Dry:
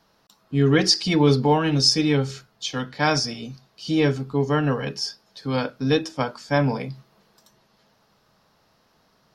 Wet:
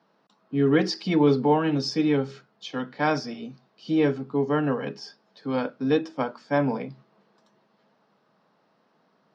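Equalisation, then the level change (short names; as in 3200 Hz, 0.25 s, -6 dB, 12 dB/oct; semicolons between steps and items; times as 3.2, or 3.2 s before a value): HPF 170 Hz 24 dB/oct; tape spacing loss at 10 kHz 26 dB; 0.0 dB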